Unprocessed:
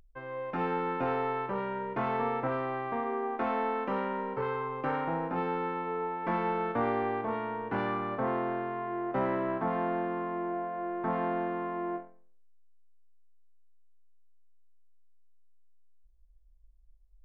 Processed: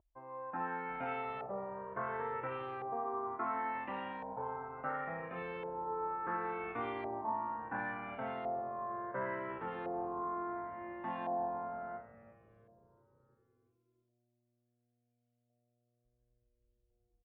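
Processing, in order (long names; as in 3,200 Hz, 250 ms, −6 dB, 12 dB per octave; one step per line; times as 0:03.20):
echo with shifted repeats 345 ms, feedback 63%, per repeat −120 Hz, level −17 dB
auto-filter low-pass saw up 0.71 Hz 690–3,700 Hz
high-pass filter 48 Hz
low-shelf EQ 150 Hz −5.5 dB
flanger whose copies keep moving one way falling 0.28 Hz
level −5 dB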